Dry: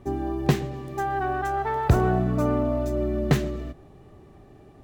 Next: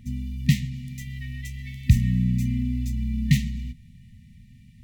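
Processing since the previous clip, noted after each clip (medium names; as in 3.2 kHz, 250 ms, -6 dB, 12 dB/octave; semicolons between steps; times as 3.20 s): FFT band-reject 250–1800 Hz; trim +3 dB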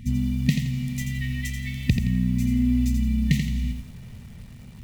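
compression 6:1, threshold -25 dBFS, peak gain reduction 14.5 dB; bit-crushed delay 85 ms, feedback 35%, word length 9-bit, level -6 dB; trim +7 dB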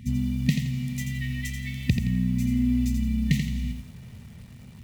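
high-pass 55 Hz; trim -1.5 dB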